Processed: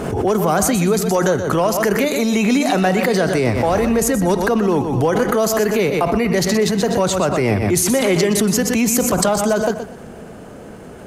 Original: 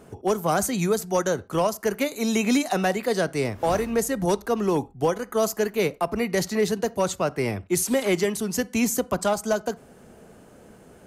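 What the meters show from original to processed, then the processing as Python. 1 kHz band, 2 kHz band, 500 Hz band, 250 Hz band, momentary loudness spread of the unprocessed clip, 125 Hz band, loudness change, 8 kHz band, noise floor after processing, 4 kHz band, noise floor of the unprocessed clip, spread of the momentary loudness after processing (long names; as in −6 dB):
+7.0 dB, +8.0 dB, +7.0 dB, +8.5 dB, 4 LU, +10.5 dB, +8.0 dB, +8.5 dB, −36 dBFS, +8.0 dB, −50 dBFS, 2 LU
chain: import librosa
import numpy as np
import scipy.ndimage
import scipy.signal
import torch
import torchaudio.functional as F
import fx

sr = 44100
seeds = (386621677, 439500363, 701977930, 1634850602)

p1 = fx.high_shelf(x, sr, hz=5400.0, db=-7.0)
p2 = fx.over_compress(p1, sr, threshold_db=-28.0, ratio=-0.5)
p3 = p1 + (p2 * 10.0 ** (-1.0 / 20.0))
p4 = fx.echo_feedback(p3, sr, ms=123, feedback_pct=29, wet_db=-10.0)
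p5 = fx.pre_swell(p4, sr, db_per_s=39.0)
y = p5 * 10.0 ** (4.0 / 20.0)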